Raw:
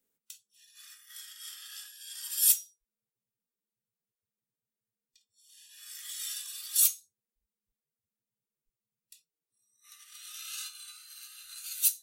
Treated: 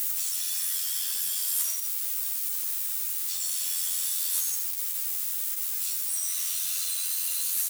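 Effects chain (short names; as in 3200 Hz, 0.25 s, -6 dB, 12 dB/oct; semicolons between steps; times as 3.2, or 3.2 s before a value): switching spikes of -17.5 dBFS; echo 0.146 s -10 dB; soft clip -18.5 dBFS, distortion -15 dB; chorus 0.26 Hz, delay 16.5 ms, depth 2.5 ms; granular stretch 0.64×, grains 23 ms; steep high-pass 900 Hz 96 dB/oct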